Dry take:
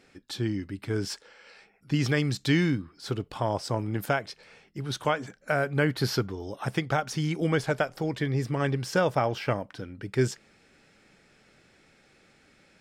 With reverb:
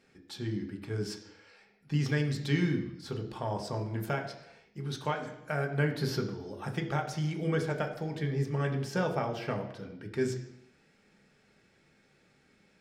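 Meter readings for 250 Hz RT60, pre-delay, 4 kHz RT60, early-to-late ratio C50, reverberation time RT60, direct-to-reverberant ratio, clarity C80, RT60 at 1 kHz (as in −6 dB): 0.80 s, 3 ms, 0.85 s, 9.0 dB, 0.85 s, 2.5 dB, 11.5 dB, 0.85 s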